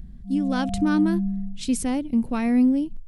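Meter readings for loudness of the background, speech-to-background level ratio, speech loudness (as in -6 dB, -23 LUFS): -28.5 LUFS, 4.5 dB, -24.0 LUFS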